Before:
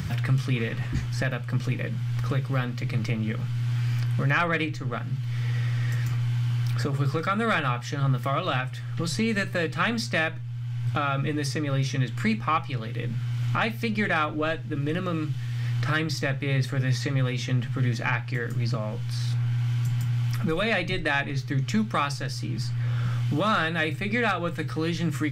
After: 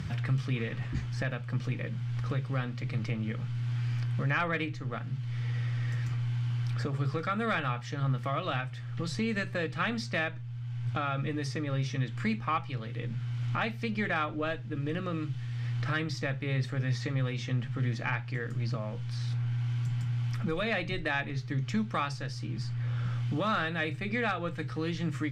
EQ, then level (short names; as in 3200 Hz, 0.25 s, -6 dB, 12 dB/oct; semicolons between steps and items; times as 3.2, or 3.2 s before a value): air absorption 57 m; -5.5 dB